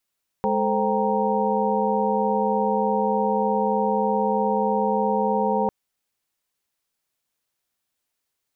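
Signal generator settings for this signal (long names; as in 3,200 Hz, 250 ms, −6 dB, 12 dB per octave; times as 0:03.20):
held notes G#3/A4/C5/G5/A#5 sine, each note −25.5 dBFS 5.25 s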